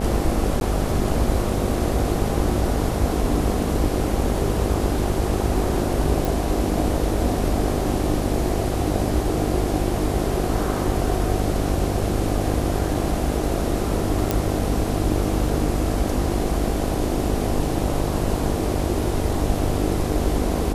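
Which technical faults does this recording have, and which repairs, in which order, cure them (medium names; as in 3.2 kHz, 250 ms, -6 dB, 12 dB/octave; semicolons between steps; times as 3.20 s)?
buzz 50 Hz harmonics 16 -26 dBFS
0.60–0.61 s: dropout 11 ms
6.25 s: pop
14.31 s: pop -5 dBFS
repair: de-click; de-hum 50 Hz, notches 16; interpolate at 0.60 s, 11 ms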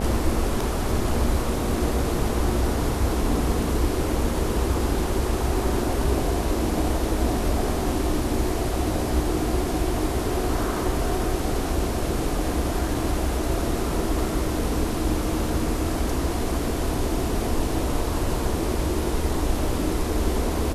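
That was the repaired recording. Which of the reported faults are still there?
nothing left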